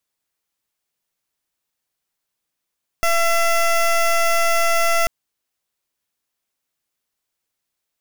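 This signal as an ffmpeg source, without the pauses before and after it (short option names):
-f lavfi -i "aevalsrc='0.15*(2*lt(mod(674*t,1),0.17)-1)':d=2.04:s=44100"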